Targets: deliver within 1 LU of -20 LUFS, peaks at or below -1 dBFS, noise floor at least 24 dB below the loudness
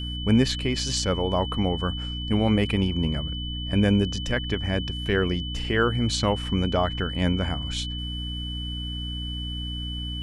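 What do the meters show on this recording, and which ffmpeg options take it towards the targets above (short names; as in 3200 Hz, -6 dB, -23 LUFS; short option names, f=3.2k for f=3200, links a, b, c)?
hum 60 Hz; harmonics up to 300 Hz; hum level -30 dBFS; steady tone 3000 Hz; tone level -34 dBFS; loudness -25.5 LUFS; peak -8.0 dBFS; loudness target -20.0 LUFS
-> -af "bandreject=f=60:t=h:w=4,bandreject=f=120:t=h:w=4,bandreject=f=180:t=h:w=4,bandreject=f=240:t=h:w=4,bandreject=f=300:t=h:w=4"
-af "bandreject=f=3k:w=30"
-af "volume=5.5dB"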